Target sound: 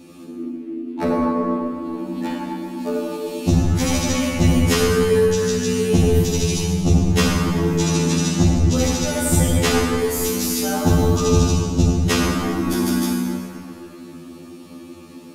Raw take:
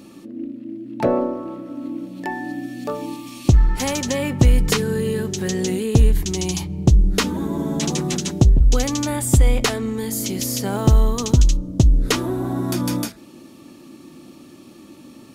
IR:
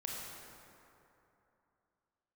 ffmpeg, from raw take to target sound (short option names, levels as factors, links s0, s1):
-filter_complex "[0:a]asettb=1/sr,asplit=3[s0][s1][s2];[s0]atrim=end=1.874[s3];[s1]atrim=start=1.87:end=2.36,asetpts=PTS-STARTPTS,afade=t=in:d=0.004:c=qsin,afade=t=out:st=0.486:d=0.004:c=qsin,aeval=exprs='0.188*(cos(1*acos(clip(val(0)/0.188,-1,1)))-cos(1*PI/2))+0.0237*(cos(5*acos(clip(val(0)/0.188,-1,1)))-cos(5*PI/2))':c=same[s4];[s2]atrim=start=2.356[s5];[s3][s4]acrossfade=d=0.004:c1=hsin:c2=qsin[s6];[s6][s5]acrossfade=d=0.004:c1=qsin:c2=hsin[s7];[1:a]atrim=start_sample=2205,asetrate=48510,aresample=44100[s8];[s7][s8]afir=irnorm=-1:irlink=0,afftfilt=real='re*2*eq(mod(b,4),0)':imag='im*2*eq(mod(b,4),0)':win_size=2048:overlap=0.75,volume=2"